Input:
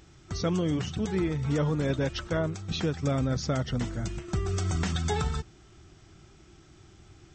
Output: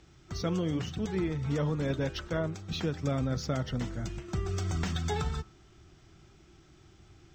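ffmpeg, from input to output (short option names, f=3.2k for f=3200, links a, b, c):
-filter_complex "[0:a]lowpass=7.2k,bandreject=f=100.7:t=h:w=4,bandreject=f=201.4:t=h:w=4,bandreject=f=302.1:t=h:w=4,bandreject=f=402.8:t=h:w=4,bandreject=f=503.5:t=h:w=4,bandreject=f=604.2:t=h:w=4,bandreject=f=704.9:t=h:w=4,bandreject=f=805.6:t=h:w=4,bandreject=f=906.3:t=h:w=4,bandreject=f=1.007k:t=h:w=4,bandreject=f=1.1077k:t=h:w=4,bandreject=f=1.2084k:t=h:w=4,bandreject=f=1.3091k:t=h:w=4,bandreject=f=1.4098k:t=h:w=4,bandreject=f=1.5105k:t=h:w=4,bandreject=f=1.6112k:t=h:w=4,bandreject=f=1.7119k:t=h:w=4,bandreject=f=1.8126k:t=h:w=4,bandreject=f=1.9133k:t=h:w=4,acrossover=split=100|3900[a][b][c];[c]acrusher=bits=4:mode=log:mix=0:aa=0.000001[d];[a][b][d]amix=inputs=3:normalize=0,volume=-3dB"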